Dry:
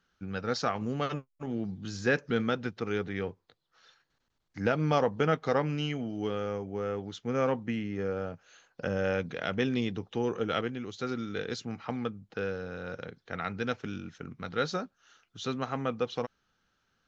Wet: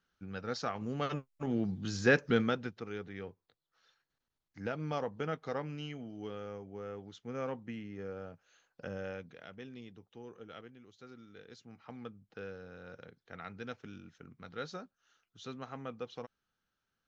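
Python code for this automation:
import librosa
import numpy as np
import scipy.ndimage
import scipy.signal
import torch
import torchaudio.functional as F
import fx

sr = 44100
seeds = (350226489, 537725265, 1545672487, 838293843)

y = fx.gain(x, sr, db=fx.line((0.74, -6.5), (1.46, 1.0), (2.33, 1.0), (2.89, -10.0), (8.94, -10.0), (9.55, -19.0), (11.45, -19.0), (12.13, -11.0)))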